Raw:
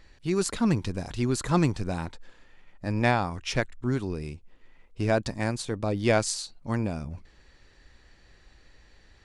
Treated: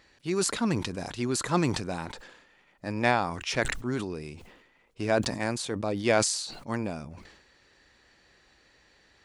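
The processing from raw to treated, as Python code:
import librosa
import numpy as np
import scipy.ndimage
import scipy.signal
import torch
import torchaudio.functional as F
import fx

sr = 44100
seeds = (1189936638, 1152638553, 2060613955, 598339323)

y = fx.highpass(x, sr, hz=260.0, slope=6)
y = fx.sustainer(y, sr, db_per_s=60.0)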